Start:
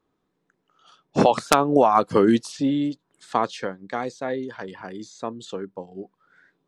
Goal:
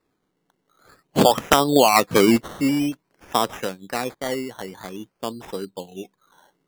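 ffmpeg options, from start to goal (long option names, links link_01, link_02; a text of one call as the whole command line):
ffmpeg -i in.wav -filter_complex "[0:a]asplit=3[link_01][link_02][link_03];[link_01]afade=type=out:start_time=4.13:duration=0.02[link_04];[link_02]adynamicsmooth=sensitivity=6:basefreq=710,afade=type=in:start_time=4.13:duration=0.02,afade=type=out:start_time=5.25:duration=0.02[link_05];[link_03]afade=type=in:start_time=5.25:duration=0.02[link_06];[link_04][link_05][link_06]amix=inputs=3:normalize=0,acrusher=samples=14:mix=1:aa=0.000001:lfo=1:lforange=8.4:lforate=0.5,volume=1.5dB" out.wav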